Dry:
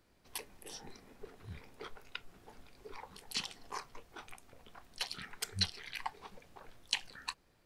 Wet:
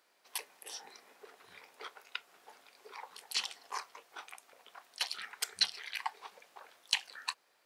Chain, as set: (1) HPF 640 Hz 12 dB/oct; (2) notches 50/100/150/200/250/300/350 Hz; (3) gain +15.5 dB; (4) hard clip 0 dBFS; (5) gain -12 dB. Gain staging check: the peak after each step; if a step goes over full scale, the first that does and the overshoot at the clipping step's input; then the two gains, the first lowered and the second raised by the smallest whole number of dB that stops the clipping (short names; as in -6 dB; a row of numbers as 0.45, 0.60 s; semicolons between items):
-12.0, -12.0, +3.5, 0.0, -12.0 dBFS; step 3, 3.5 dB; step 3 +11.5 dB, step 5 -8 dB